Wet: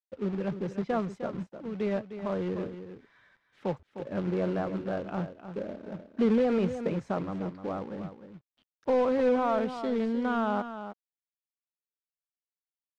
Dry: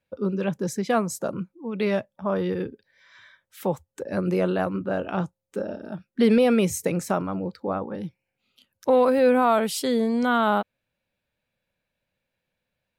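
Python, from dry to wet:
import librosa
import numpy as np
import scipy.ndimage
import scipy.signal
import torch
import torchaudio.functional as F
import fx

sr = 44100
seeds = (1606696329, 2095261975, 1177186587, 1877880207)

p1 = fx.quant_companded(x, sr, bits=4)
p2 = fx.spacing_loss(p1, sr, db_at_10k=33)
p3 = p2 + fx.echo_single(p2, sr, ms=306, db=-10.5, dry=0)
y = p3 * librosa.db_to_amplitude(-5.0)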